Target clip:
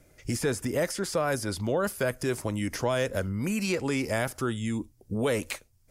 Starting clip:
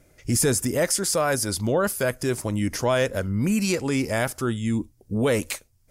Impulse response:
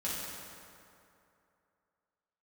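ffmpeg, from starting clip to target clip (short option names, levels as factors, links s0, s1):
-filter_complex "[0:a]acrossover=split=390|3900[s0][s1][s2];[s0]acompressor=threshold=0.0398:ratio=4[s3];[s1]acompressor=threshold=0.0631:ratio=4[s4];[s2]acompressor=threshold=0.0126:ratio=4[s5];[s3][s4][s5]amix=inputs=3:normalize=0,volume=0.841"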